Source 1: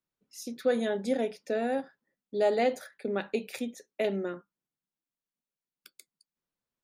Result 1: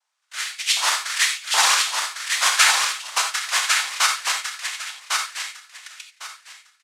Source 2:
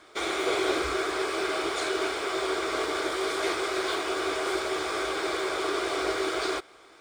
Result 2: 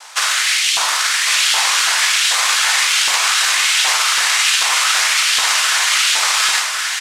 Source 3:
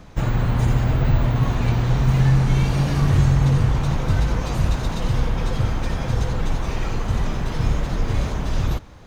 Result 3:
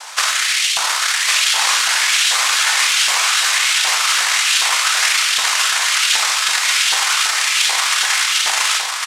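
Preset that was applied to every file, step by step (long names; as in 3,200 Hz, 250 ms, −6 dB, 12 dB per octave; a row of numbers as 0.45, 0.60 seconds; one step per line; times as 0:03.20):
loose part that buzzes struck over −21 dBFS, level −13 dBFS
Chebyshev high-pass filter 660 Hz, order 10
downward compressor 6 to 1, threshold −32 dBFS
cochlear-implant simulation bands 1
auto-filter high-pass saw up 1.3 Hz 830–3,100 Hz
repeating echo 1,103 ms, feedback 21%, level −4 dB
reverb whose tail is shaped and stops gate 110 ms flat, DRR 4 dB
normalise the peak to −1.5 dBFS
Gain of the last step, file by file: +16.0, +16.0, +16.5 decibels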